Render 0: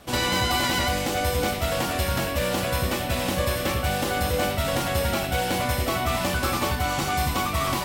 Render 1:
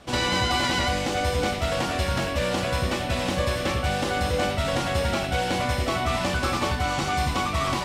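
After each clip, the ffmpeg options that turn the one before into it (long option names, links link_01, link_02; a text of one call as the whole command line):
ffmpeg -i in.wav -af "lowpass=7300" out.wav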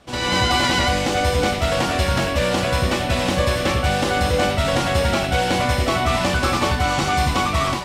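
ffmpeg -i in.wav -af "dynaudnorm=framelen=100:gausssize=5:maxgain=8.5dB,volume=-2.5dB" out.wav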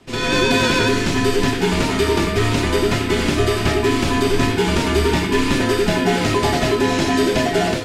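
ffmpeg -i in.wav -af "afreqshift=-480,volume=2dB" out.wav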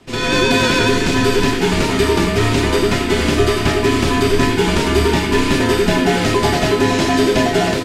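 ffmpeg -i in.wav -af "aecho=1:1:564:0.335,volume=2dB" out.wav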